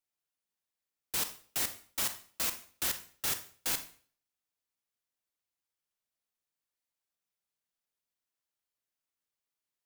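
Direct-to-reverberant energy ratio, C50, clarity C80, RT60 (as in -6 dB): 8.5 dB, 12.0 dB, 16.5 dB, 0.45 s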